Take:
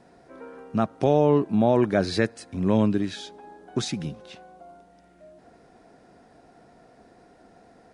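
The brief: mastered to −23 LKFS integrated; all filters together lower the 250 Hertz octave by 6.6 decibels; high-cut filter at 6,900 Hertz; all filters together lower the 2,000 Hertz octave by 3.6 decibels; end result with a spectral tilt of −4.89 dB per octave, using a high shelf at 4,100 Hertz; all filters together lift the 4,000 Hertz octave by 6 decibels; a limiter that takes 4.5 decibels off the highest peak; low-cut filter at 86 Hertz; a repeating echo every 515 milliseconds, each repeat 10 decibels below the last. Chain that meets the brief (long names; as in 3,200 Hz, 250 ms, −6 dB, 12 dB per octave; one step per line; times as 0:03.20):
high-pass filter 86 Hz
low-pass filter 6,900 Hz
parametric band 250 Hz −8.5 dB
parametric band 2,000 Hz −7 dB
parametric band 4,000 Hz +5.5 dB
high-shelf EQ 4,100 Hz +6 dB
brickwall limiter −16 dBFS
repeating echo 515 ms, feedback 32%, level −10 dB
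level +6 dB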